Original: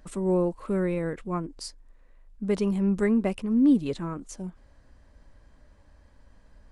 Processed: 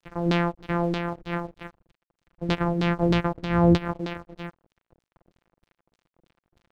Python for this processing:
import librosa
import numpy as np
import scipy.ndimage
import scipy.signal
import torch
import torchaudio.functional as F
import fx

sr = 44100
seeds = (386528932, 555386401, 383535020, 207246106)

y = np.r_[np.sort(x[:len(x) // 256 * 256].reshape(-1, 256), axis=1).ravel(), x[len(x) // 256 * 256:]]
y = fx.filter_lfo_lowpass(y, sr, shape='saw_down', hz=3.2, low_hz=290.0, high_hz=4200.0, q=2.2)
y = np.sign(y) * np.maximum(np.abs(y) - 10.0 ** (-48.0 / 20.0), 0.0)